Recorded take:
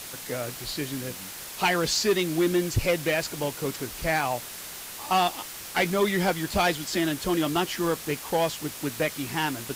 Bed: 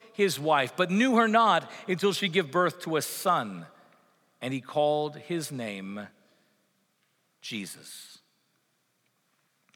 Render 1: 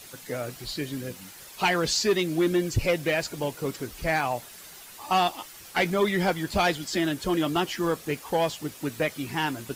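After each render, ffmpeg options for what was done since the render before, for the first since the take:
ffmpeg -i in.wav -af "afftdn=noise_reduction=9:noise_floor=-40" out.wav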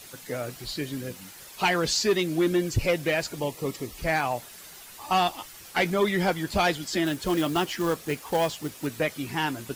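ffmpeg -i in.wav -filter_complex "[0:a]asettb=1/sr,asplit=3[link_01][link_02][link_03];[link_01]atrim=end=3.404[link_04];[link_02]atrim=start=3.4:end=3.98,asetpts=PTS-STARTPTS,afade=type=in:duration=0.004:curve=qsin,afade=type=out:start_time=0.576:duration=0.004:curve=qsin,asuperstop=centerf=1500:order=8:qfactor=4.9[link_05];[link_03]atrim=start=3.976[link_06];[link_04][link_05]acrossfade=duration=0.004:curve1=hsin:curve2=qsin[link_07];[link_07][link_06]acrossfade=duration=0.004:curve1=qsin:curve2=hsin,asettb=1/sr,asplit=3[link_08][link_09][link_10];[link_08]atrim=end=4.684[link_11];[link_09]atrim=start=4.68:end=5.55,asetpts=PTS-STARTPTS,afade=type=in:duration=0.004:curve=qsin,afade=type=out:start_time=0.866:duration=0.004:curve=qsin,asubboost=boost=5:cutoff=180[link_12];[link_10]atrim=start=5.546[link_13];[link_11][link_12]acrossfade=duration=0.004:curve1=hsin:curve2=qsin[link_14];[link_14][link_13]acrossfade=duration=0.004:curve1=qsin:curve2=hsin,asettb=1/sr,asplit=3[link_15][link_16][link_17];[link_15]atrim=end=7.064[link_18];[link_16]atrim=start=7.06:end=8.87,asetpts=PTS-STARTPTS,afade=type=in:duration=0.004:curve=qsin,afade=type=out:start_time=1.806:duration=0.004:curve=qsin,acrusher=bits=4:mode=log:mix=0:aa=0.000001[link_19];[link_17]atrim=start=8.866[link_20];[link_18][link_19]acrossfade=duration=0.004:curve1=hsin:curve2=qsin[link_21];[link_21][link_20]acrossfade=duration=0.004:curve1=qsin:curve2=hsin" out.wav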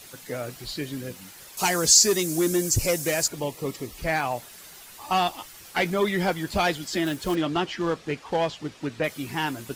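ffmpeg -i in.wav -filter_complex "[0:a]asettb=1/sr,asplit=3[link_01][link_02][link_03];[link_01]atrim=end=1.574[link_04];[link_02]atrim=start=1.57:end=3.28,asetpts=PTS-STARTPTS,afade=type=in:duration=0.004:curve=qsin,afade=type=out:start_time=1.706:duration=0.004:curve=qsin,highshelf=frequency=4700:width_type=q:width=1.5:gain=12.5[link_05];[link_03]atrim=start=3.276[link_06];[link_04][link_05]acrossfade=duration=0.004:curve1=hsin:curve2=qsin[link_07];[link_07][link_06]acrossfade=duration=0.004:curve1=qsin:curve2=hsin,asettb=1/sr,asplit=3[link_08][link_09][link_10];[link_08]atrim=end=7.354[link_11];[link_09]atrim=start=7.35:end=9.04,asetpts=PTS-STARTPTS,afade=type=in:duration=0.004:curve=qsin,afade=type=out:start_time=1.686:duration=0.004:curve=qsin,lowpass=4800[link_12];[link_10]atrim=start=9.036[link_13];[link_11][link_12]acrossfade=duration=0.004:curve1=hsin:curve2=qsin[link_14];[link_14][link_13]acrossfade=duration=0.004:curve1=qsin:curve2=hsin" out.wav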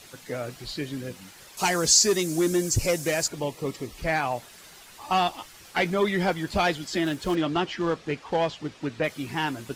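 ffmpeg -i in.wav -af "highshelf=frequency=11000:gain=-12" out.wav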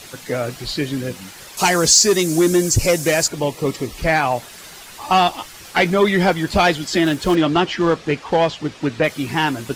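ffmpeg -i in.wav -filter_complex "[0:a]asplit=2[link_01][link_02];[link_02]alimiter=limit=-18dB:level=0:latency=1:release=441,volume=-2dB[link_03];[link_01][link_03]amix=inputs=2:normalize=0,acontrast=20" out.wav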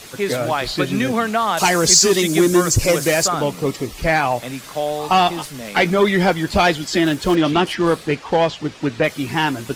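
ffmpeg -i in.wav -i bed.wav -filter_complex "[1:a]volume=2.5dB[link_01];[0:a][link_01]amix=inputs=2:normalize=0" out.wav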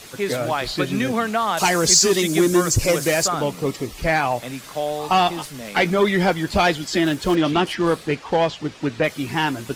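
ffmpeg -i in.wav -af "volume=-2.5dB" out.wav

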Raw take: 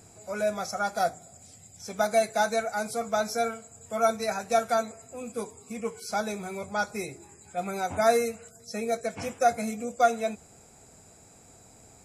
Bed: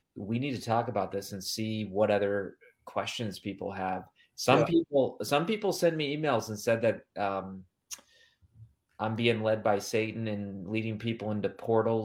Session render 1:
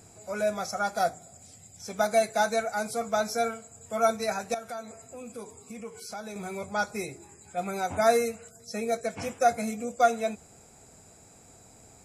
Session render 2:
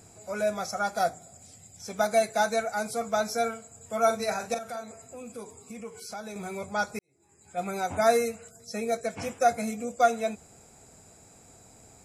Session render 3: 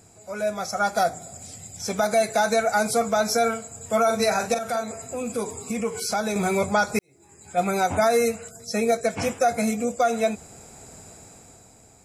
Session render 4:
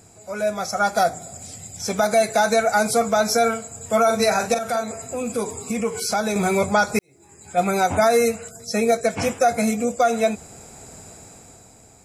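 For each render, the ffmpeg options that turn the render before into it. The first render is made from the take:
ffmpeg -i in.wav -filter_complex "[0:a]asettb=1/sr,asplit=3[link_01][link_02][link_03];[link_01]atrim=end=4.544[link_04];[link_02]atrim=start=4.54:end=6.36,asetpts=PTS-STARTPTS,afade=type=in:duration=0.004:curve=qsin,afade=type=out:start_time=1.816:duration=0.004:curve=qsin,acompressor=threshold=-39dB:ratio=2.5:attack=3.2:release=140:knee=1:detection=peak[link_05];[link_03]atrim=start=6.356[link_06];[link_04][link_05]acrossfade=duration=0.004:curve1=hsin:curve2=qsin[link_07];[link_07][link_06]acrossfade=duration=0.004:curve1=qsin:curve2=hsin" out.wav
ffmpeg -i in.wav -filter_complex "[0:a]asettb=1/sr,asplit=3[link_01][link_02][link_03];[link_01]atrim=end=4.034[link_04];[link_02]atrim=start=4.03:end=4.84,asetpts=PTS-STARTPTS,afade=type=in:duration=0.004:curve=qsin,afade=type=out:start_time=0.806:duration=0.004:curve=qsin,asplit=2[link_05][link_06];[link_06]adelay=43,volume=-8dB[link_07];[link_05][link_07]amix=inputs=2:normalize=0,atrim=end_sample=35721[link_08];[link_03]atrim=start=4.836[link_09];[link_04][link_08]acrossfade=duration=0.004:curve1=hsin:curve2=qsin[link_10];[link_10][link_09]acrossfade=duration=0.004:curve1=qsin:curve2=hsin,asplit=2[link_11][link_12];[link_11]atrim=end=6.99,asetpts=PTS-STARTPTS,afade=type=out:start_time=6.986:duration=0.004:curve=hsin[link_13];[link_12]atrim=start=6.99,asetpts=PTS-STARTPTS,afade=type=in:duration=0.61:curve=qua[link_14];[link_13][link_14]concat=n=2:v=0:a=1" out.wav
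ffmpeg -i in.wav -af "dynaudnorm=framelen=110:gausssize=17:maxgain=14.5dB,alimiter=limit=-11.5dB:level=0:latency=1:release=113" out.wav
ffmpeg -i in.wav -af "volume=3dB" out.wav

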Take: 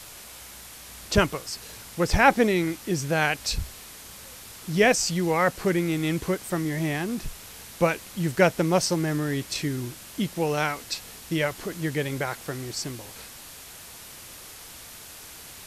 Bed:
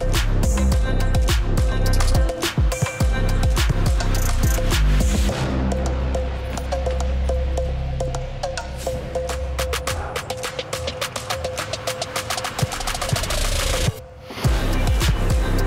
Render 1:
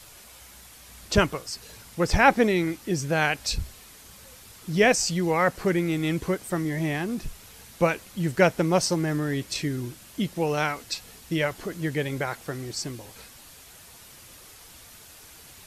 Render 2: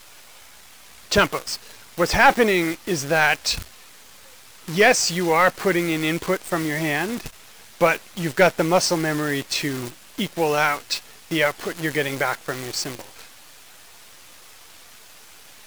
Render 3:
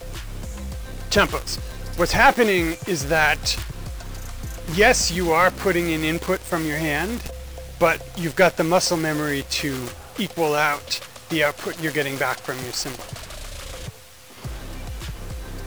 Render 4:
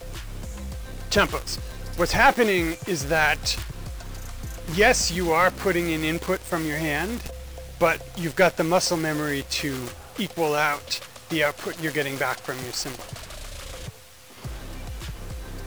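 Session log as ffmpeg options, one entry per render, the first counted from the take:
ffmpeg -i in.wav -af "afftdn=noise_reduction=6:noise_floor=-44" out.wav
ffmpeg -i in.wav -filter_complex "[0:a]asplit=2[link_01][link_02];[link_02]highpass=frequency=720:poles=1,volume=15dB,asoftclip=type=tanh:threshold=-3.5dB[link_03];[link_01][link_03]amix=inputs=2:normalize=0,lowpass=frequency=4100:poles=1,volume=-6dB,acrusher=bits=6:dc=4:mix=0:aa=0.000001" out.wav
ffmpeg -i in.wav -i bed.wav -filter_complex "[1:a]volume=-14dB[link_01];[0:a][link_01]amix=inputs=2:normalize=0" out.wav
ffmpeg -i in.wav -af "volume=-2.5dB" out.wav

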